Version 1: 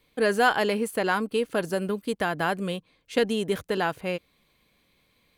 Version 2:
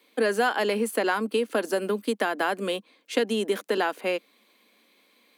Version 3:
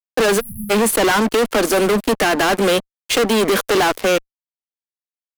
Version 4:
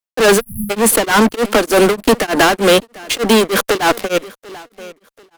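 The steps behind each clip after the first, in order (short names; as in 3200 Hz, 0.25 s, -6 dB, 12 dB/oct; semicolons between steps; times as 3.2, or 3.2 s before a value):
steep high-pass 210 Hz 72 dB/oct; compressor 3:1, threshold -27 dBFS, peak gain reduction 9.5 dB; gain +5 dB
fuzz box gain 37 dB, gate -43 dBFS; spectral delete 0.4–0.7, 220–10000 Hz
feedback echo 0.741 s, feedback 31%, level -23 dB; beating tremolo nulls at 3.3 Hz; gain +6.5 dB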